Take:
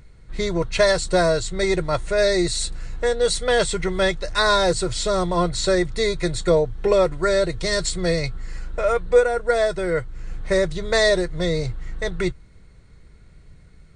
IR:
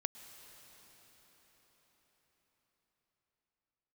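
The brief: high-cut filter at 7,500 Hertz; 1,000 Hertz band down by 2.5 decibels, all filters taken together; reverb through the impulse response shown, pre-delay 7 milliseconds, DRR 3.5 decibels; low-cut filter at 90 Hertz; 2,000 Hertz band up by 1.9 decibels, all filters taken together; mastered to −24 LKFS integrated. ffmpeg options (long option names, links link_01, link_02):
-filter_complex "[0:a]highpass=90,lowpass=7500,equalizer=frequency=1000:width_type=o:gain=-5,equalizer=frequency=2000:width_type=o:gain=4,asplit=2[link_01][link_02];[1:a]atrim=start_sample=2205,adelay=7[link_03];[link_02][link_03]afir=irnorm=-1:irlink=0,volume=-3dB[link_04];[link_01][link_04]amix=inputs=2:normalize=0,volume=-3dB"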